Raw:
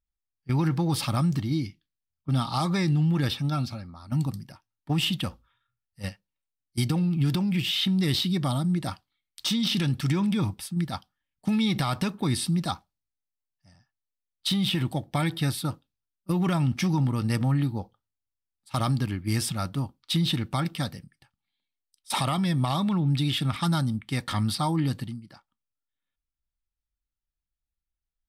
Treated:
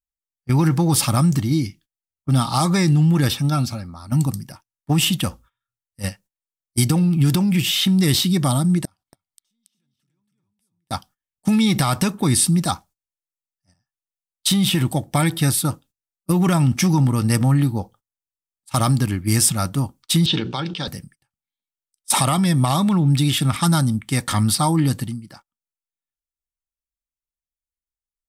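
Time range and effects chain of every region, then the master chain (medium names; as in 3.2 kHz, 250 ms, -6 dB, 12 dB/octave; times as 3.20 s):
8.85–10.91 s: compression 5:1, threshold -33 dBFS + inverted gate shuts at -32 dBFS, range -30 dB + delay 279 ms -3.5 dB
20.26–20.88 s: cabinet simulation 220–4700 Hz, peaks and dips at 260 Hz -9 dB, 430 Hz +4 dB, 670 Hz -10 dB, 1.2 kHz -7 dB, 2 kHz -9 dB, 3.3 kHz +5 dB + hum notches 60/120/180/240/300/360/420 Hz + decay stretcher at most 64 dB/s
whole clip: gate -53 dBFS, range -18 dB; resonant high shelf 5.4 kHz +7 dB, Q 1.5; trim +7.5 dB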